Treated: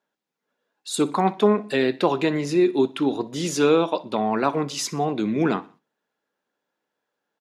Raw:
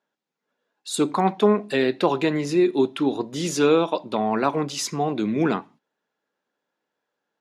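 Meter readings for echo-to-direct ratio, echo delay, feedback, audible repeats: −20.0 dB, 61 ms, 42%, 2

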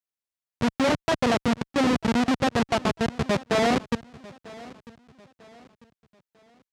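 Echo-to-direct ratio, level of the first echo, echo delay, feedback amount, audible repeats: −20.0 dB, −20.5 dB, 946 ms, 38%, 2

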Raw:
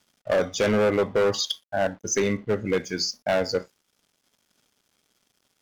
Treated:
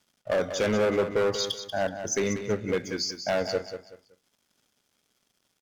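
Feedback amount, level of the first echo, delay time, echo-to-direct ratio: 28%, −9.5 dB, 188 ms, −9.0 dB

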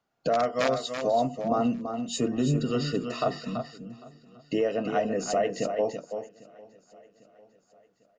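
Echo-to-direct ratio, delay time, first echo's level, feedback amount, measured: −7.5 dB, 333 ms, −7.5 dB, repeats not evenly spaced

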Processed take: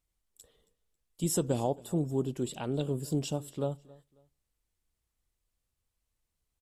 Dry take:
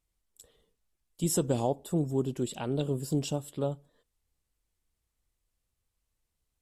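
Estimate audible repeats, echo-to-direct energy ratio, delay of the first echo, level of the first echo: 2, −22.5 dB, 272 ms, −23.0 dB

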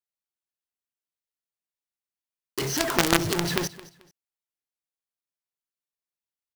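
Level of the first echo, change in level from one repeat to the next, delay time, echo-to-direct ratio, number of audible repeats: −19.0 dB, −11.5 dB, 218 ms, −18.5 dB, 2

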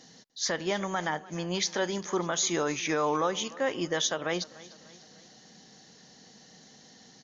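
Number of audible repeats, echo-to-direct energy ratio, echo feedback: 3, −19.0 dB, 48%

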